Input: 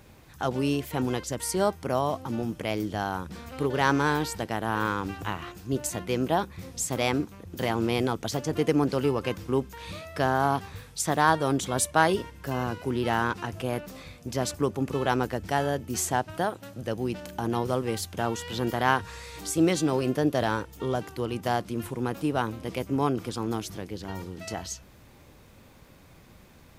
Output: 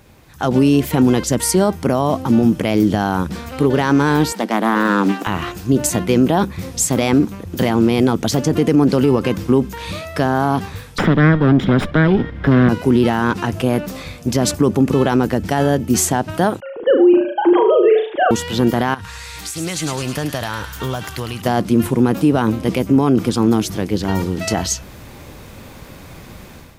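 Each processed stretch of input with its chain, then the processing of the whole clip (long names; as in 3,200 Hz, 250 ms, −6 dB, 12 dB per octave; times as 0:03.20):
0:04.32–0:05.27: Chebyshev high-pass filter 190 Hz, order 6 + highs frequency-modulated by the lows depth 0.18 ms
0:10.98–0:12.69: lower of the sound and its delayed copy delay 0.56 ms + high-frequency loss of the air 360 metres + multiband upward and downward compressor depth 100%
0:16.60–0:18.31: three sine waves on the formant tracks + low-shelf EQ 210 Hz +10.5 dB + flutter between parallel walls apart 6.3 metres, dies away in 0.43 s
0:18.94–0:21.42: parametric band 370 Hz −11.5 dB 1.9 octaves + downward compressor 12 to 1, threshold −34 dBFS + delay with a high-pass on its return 105 ms, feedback 62%, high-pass 1,600 Hz, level −5.5 dB
whole clip: dynamic equaliser 220 Hz, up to +8 dB, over −40 dBFS, Q 0.92; automatic gain control; boost into a limiter +8.5 dB; level −4 dB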